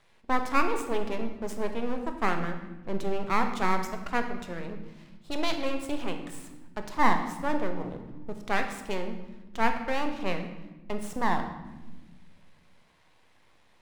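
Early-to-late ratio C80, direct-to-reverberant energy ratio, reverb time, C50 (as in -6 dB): 10.0 dB, 5.5 dB, 1.2 s, 8.0 dB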